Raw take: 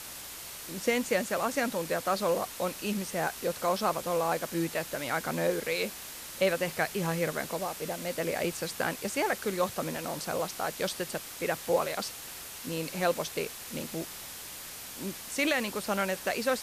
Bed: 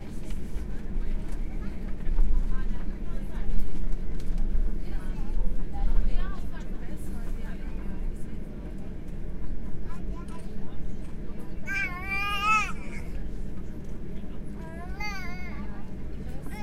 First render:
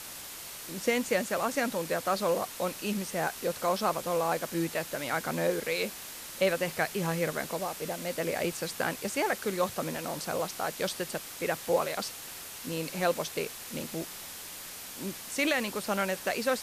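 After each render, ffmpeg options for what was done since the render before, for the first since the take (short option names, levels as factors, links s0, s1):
-af "bandreject=f=60:t=h:w=4,bandreject=f=120:t=h:w=4"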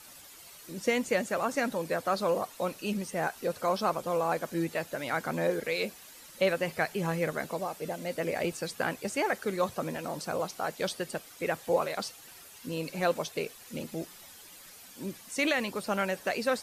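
-af "afftdn=nr=11:nf=-43"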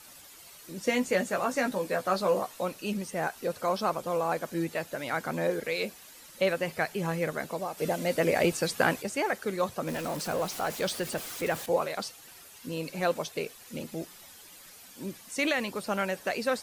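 -filter_complex "[0:a]asettb=1/sr,asplit=3[s0][s1][s2];[s0]atrim=end=0.854[s3];[s1]atrim=start=0.85:end=2.62,asetpts=PTS-STARTPTS,afade=t=in:d=0.004:c=qsin,afade=t=out:st=1.766:d=0.004:c=qsin,asplit=2[s4][s5];[s5]adelay=16,volume=0.562[s6];[s4][s6]amix=inputs=2:normalize=0,atrim=end_sample=78057[s7];[s2]atrim=start=2.616[s8];[s3][s7]acrossfade=d=0.004:c1=hsin:c2=qsin[s9];[s9][s8]acrossfade=d=0.004:c1=qsin:c2=hsin,asplit=3[s10][s11][s12];[s10]afade=t=out:st=7.77:d=0.02[s13];[s11]acontrast=60,afade=t=in:st=7.77:d=0.02,afade=t=out:st=9.01:d=0.02[s14];[s12]afade=t=in:st=9.01:d=0.02[s15];[s13][s14][s15]amix=inputs=3:normalize=0,asettb=1/sr,asplit=3[s16][s17][s18];[s16]atrim=end=9.874[s19];[s17]atrim=start=9.87:end=11.66,asetpts=PTS-STARTPTS,afade=t=in:d=0.004:c=qsin,afade=t=out:st=1.786:d=0.004:c=qsin,aeval=exprs='val(0)+0.5*0.0158*sgn(val(0))':c=same[s20];[s18]atrim=start=11.656[s21];[s19][s20]acrossfade=d=0.004:c1=hsin:c2=qsin[s22];[s22][s21]acrossfade=d=0.004:c1=qsin:c2=hsin"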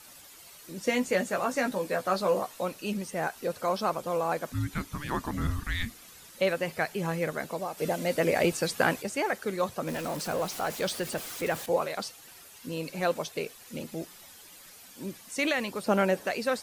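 -filter_complex "[0:a]asettb=1/sr,asplit=3[s0][s1][s2];[s0]atrim=end=4.524[s3];[s1]atrim=start=4.52:end=6.3,asetpts=PTS-STARTPTS,afade=t=in:d=0.004:c=qsin,afade=t=out:st=1.776:d=0.004:c=qsin,afreqshift=-440[s4];[s2]atrim=start=6.296[s5];[s3][s4]acrossfade=d=0.004:c1=hsin:c2=qsin[s6];[s6][s5]acrossfade=d=0.004:c1=qsin:c2=hsin,asettb=1/sr,asplit=3[s7][s8][s9];[s7]atrim=end=15.864[s10];[s8]atrim=start=15.86:end=16.26,asetpts=PTS-STARTPTS,afade=t=in:d=0.004:c=qsin,afade=t=out:st=0.396:d=0.004:c=qsin,equalizer=f=320:w=0.44:g=8.5[s11];[s9]atrim=start=16.256[s12];[s10][s11]acrossfade=d=0.004:c1=hsin:c2=qsin[s13];[s13][s12]acrossfade=d=0.004:c1=qsin:c2=hsin"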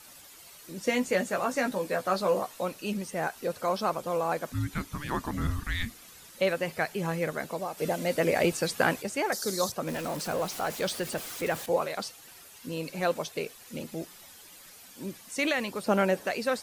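-filter_complex "[0:a]asettb=1/sr,asplit=3[s0][s1][s2];[s0]atrim=end=9.324[s3];[s1]atrim=start=9.32:end=9.72,asetpts=PTS-STARTPTS,afade=t=in:d=0.004:c=qsin,afade=t=out:st=0.396:d=0.004:c=qsin,highshelf=f=3600:t=q:w=3:g=12[s4];[s2]atrim=start=9.716[s5];[s3][s4]acrossfade=d=0.004:c1=hsin:c2=qsin[s6];[s6][s5]acrossfade=d=0.004:c1=qsin:c2=hsin"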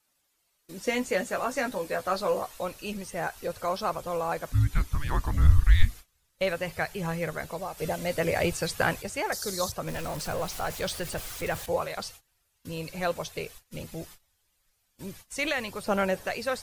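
-af "agate=range=0.0708:threshold=0.00501:ratio=16:detection=peak,asubboost=boost=12:cutoff=69"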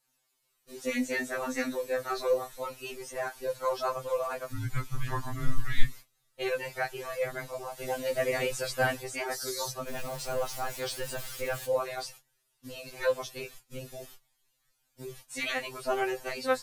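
-af "afftfilt=real='re*2.45*eq(mod(b,6),0)':imag='im*2.45*eq(mod(b,6),0)':win_size=2048:overlap=0.75"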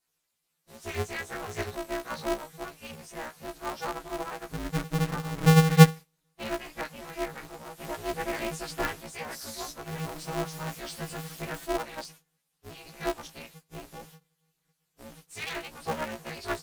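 -af "flanger=delay=5.9:depth=4.1:regen=37:speed=0.77:shape=sinusoidal,aeval=exprs='val(0)*sgn(sin(2*PI*160*n/s))':c=same"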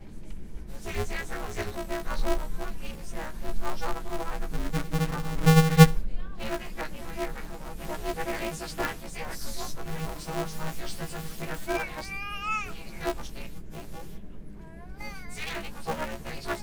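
-filter_complex "[1:a]volume=0.447[s0];[0:a][s0]amix=inputs=2:normalize=0"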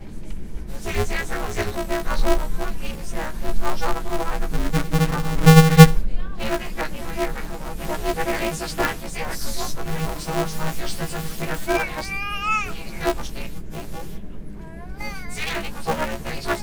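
-af "volume=2.51,alimiter=limit=0.891:level=0:latency=1"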